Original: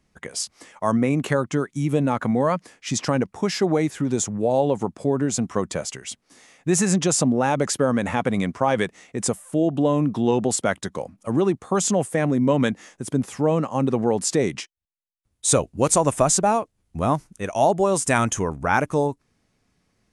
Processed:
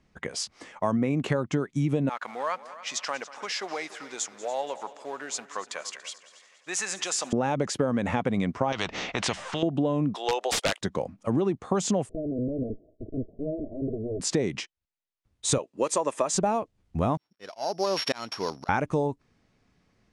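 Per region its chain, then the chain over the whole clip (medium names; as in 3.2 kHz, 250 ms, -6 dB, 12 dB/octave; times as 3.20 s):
2.09–7.33 s: companding laws mixed up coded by A + high-pass 1.1 kHz + multi-head delay 95 ms, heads second and third, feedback 45%, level -18 dB
8.72–9.63 s: low-pass 5.3 kHz 24 dB/octave + spectrum-flattening compressor 4:1
10.15–10.81 s: inverse Chebyshev high-pass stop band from 200 Hz, stop band 50 dB + treble shelf 2.3 kHz +10 dB + integer overflow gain 13.5 dB
12.09–14.20 s: comb filter that takes the minimum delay 2.9 ms + compression 2:1, threshold -29 dBFS + rippled Chebyshev low-pass 650 Hz, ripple 3 dB
15.58–16.34 s: high-pass 430 Hz + comb of notches 740 Hz
17.17–18.69 s: sorted samples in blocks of 8 samples + frequency weighting A + slow attack 413 ms
whole clip: Bessel low-pass 4.6 kHz, order 2; dynamic bell 1.4 kHz, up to -3 dB, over -38 dBFS, Q 1.2; compression, threshold -23 dBFS; trim +1.5 dB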